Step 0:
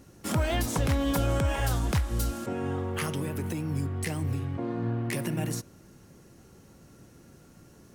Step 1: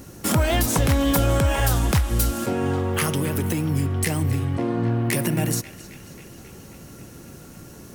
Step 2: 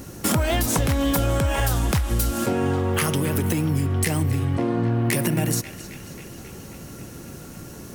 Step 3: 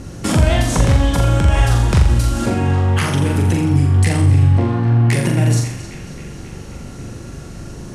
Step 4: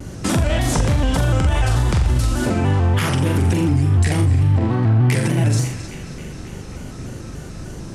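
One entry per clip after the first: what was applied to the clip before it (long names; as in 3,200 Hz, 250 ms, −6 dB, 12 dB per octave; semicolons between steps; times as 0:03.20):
high-shelf EQ 11,000 Hz +9.5 dB; in parallel at +2 dB: downward compressor, threshold −35 dBFS, peak gain reduction 13 dB; on the sum: feedback echo with a band-pass in the loop 269 ms, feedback 75%, band-pass 2,800 Hz, level −13.5 dB; level +4 dB
downward compressor 4 to 1, threshold −22 dBFS, peak gain reduction 6.5 dB; level +3.5 dB
Bessel low-pass filter 7,400 Hz, order 6; low-shelf EQ 96 Hz +11 dB; on a send: flutter between parallel walls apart 7.2 metres, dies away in 0.63 s; on the sum: level +2.5 dB
boost into a limiter +7.5 dB; pitch modulation by a square or saw wave square 3.4 Hz, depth 100 cents; level −8 dB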